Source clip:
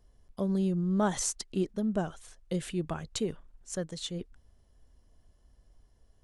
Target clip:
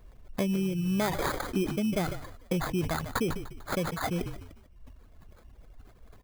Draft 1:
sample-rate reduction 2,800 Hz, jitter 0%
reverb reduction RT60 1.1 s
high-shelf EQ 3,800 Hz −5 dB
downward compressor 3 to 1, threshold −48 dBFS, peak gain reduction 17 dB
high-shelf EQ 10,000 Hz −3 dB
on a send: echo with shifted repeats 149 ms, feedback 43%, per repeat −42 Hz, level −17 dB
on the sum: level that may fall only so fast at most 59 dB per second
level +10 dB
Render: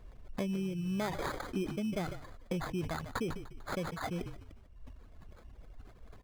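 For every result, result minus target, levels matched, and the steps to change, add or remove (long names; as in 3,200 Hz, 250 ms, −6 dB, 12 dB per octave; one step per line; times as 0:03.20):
downward compressor: peak gain reduction +6.5 dB; 8,000 Hz band −3.0 dB
change: downward compressor 3 to 1, threshold −38.5 dBFS, peak gain reduction 10.5 dB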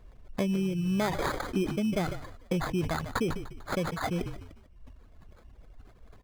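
8,000 Hz band −3.0 dB
change: second high-shelf EQ 10,000 Hz +7.5 dB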